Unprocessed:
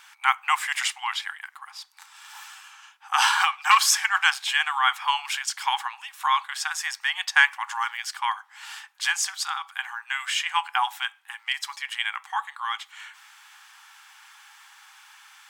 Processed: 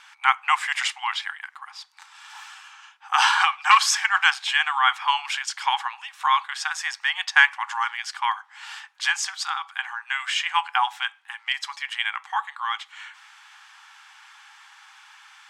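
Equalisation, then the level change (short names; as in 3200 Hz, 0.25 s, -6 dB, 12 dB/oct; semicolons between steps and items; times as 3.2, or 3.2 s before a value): air absorption 61 m; +2.5 dB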